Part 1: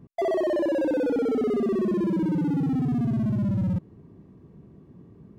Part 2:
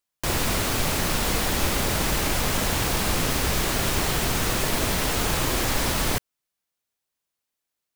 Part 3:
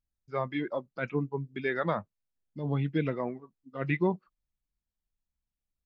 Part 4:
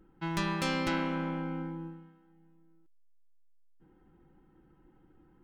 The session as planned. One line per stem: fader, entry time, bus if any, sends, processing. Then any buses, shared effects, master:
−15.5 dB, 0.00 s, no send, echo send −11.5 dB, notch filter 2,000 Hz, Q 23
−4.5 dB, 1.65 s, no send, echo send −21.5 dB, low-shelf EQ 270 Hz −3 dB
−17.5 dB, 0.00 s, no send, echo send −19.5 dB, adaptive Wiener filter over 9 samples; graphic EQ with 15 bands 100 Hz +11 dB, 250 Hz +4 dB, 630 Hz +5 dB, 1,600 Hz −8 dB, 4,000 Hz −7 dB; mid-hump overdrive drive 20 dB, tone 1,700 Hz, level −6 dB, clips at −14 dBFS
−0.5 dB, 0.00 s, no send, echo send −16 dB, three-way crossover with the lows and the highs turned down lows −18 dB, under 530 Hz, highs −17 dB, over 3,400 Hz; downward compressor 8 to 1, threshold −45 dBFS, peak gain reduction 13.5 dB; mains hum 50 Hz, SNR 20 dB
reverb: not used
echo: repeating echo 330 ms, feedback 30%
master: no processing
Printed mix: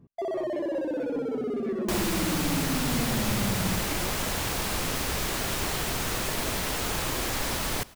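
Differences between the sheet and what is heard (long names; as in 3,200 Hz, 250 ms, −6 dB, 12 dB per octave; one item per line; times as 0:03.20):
stem 1 −15.5 dB → −6.0 dB
stem 4: muted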